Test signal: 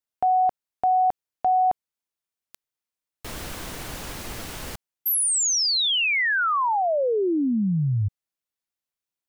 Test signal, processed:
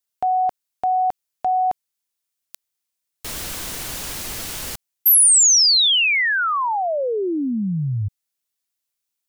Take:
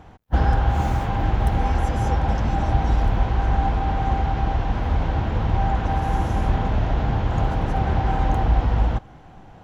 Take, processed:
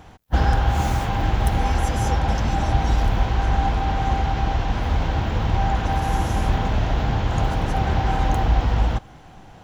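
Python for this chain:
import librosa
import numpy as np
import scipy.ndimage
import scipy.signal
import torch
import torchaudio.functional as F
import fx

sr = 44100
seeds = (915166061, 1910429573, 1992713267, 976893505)

y = fx.high_shelf(x, sr, hz=2800.0, db=10.5)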